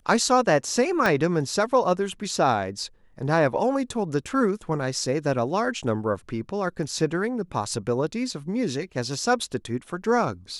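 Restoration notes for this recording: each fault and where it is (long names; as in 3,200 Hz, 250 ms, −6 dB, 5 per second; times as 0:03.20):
0:01.06: click −9 dBFS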